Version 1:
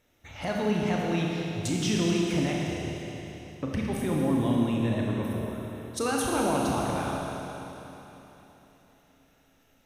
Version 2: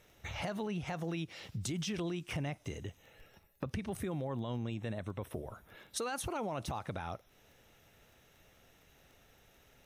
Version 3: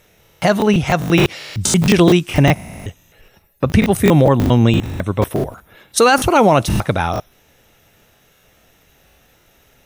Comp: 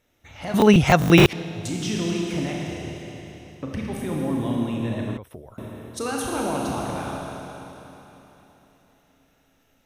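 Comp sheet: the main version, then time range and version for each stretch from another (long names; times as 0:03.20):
1
0:00.54–0:01.33: punch in from 3
0:05.17–0:05.58: punch in from 2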